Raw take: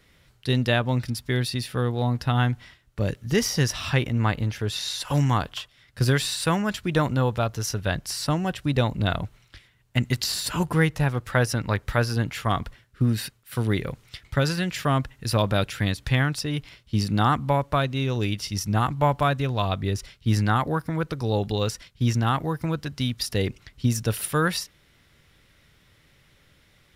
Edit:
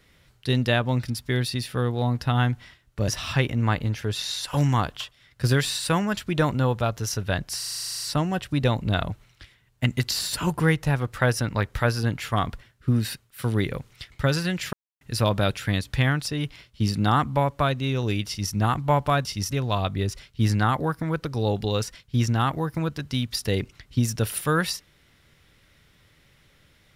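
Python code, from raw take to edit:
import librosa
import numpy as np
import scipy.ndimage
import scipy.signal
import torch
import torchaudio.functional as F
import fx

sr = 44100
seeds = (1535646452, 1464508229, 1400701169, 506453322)

y = fx.edit(x, sr, fx.cut(start_s=3.08, length_s=0.57),
    fx.stutter(start_s=8.15, slice_s=0.04, count=12),
    fx.silence(start_s=14.86, length_s=0.28),
    fx.duplicate(start_s=18.4, length_s=0.26, to_s=19.38), tone=tone)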